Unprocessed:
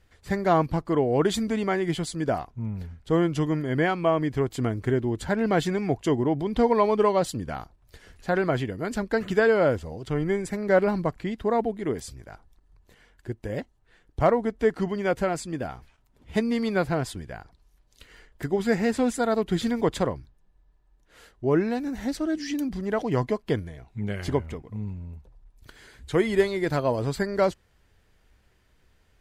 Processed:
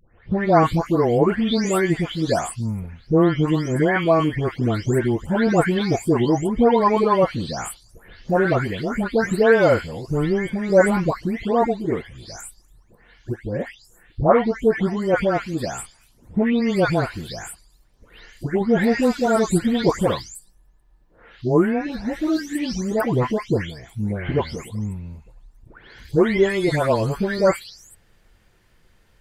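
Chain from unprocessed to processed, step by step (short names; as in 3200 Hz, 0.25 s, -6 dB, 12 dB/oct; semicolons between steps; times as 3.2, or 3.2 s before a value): spectral delay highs late, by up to 0.412 s; gain +6.5 dB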